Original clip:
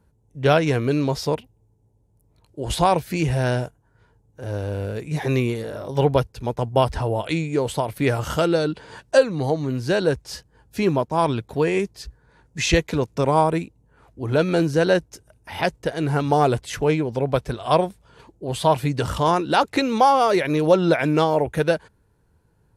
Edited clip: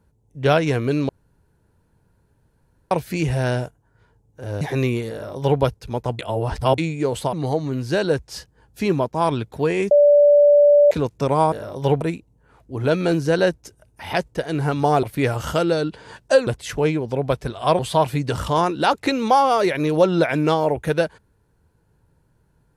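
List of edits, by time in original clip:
1.09–2.91 s: room tone
4.61–5.14 s: delete
5.65–6.14 s: copy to 13.49 s
6.72–7.31 s: reverse
7.86–9.30 s: move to 16.51 s
11.88–12.88 s: bleep 582 Hz -9 dBFS
17.83–18.49 s: delete

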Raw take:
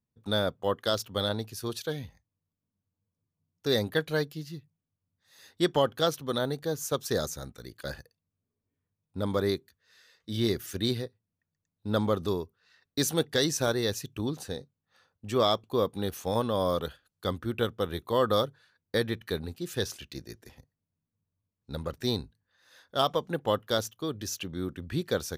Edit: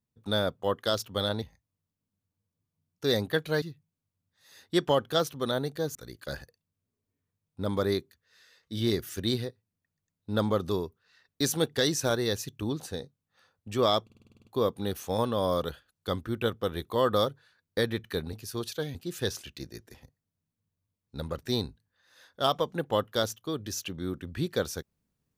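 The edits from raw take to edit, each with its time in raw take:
1.42–2.04 s: move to 19.50 s
4.24–4.49 s: delete
6.82–7.52 s: delete
15.62 s: stutter 0.05 s, 9 plays

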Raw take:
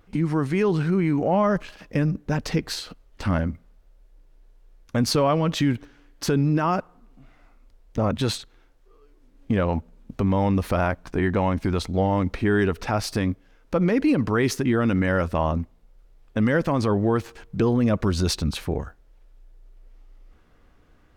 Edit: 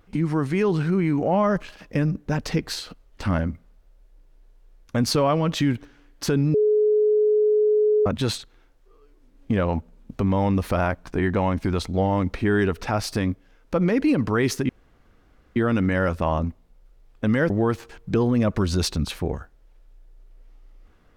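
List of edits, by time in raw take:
6.54–8.06 s: bleep 424 Hz -15.5 dBFS
14.69 s: insert room tone 0.87 s
16.63–16.96 s: delete

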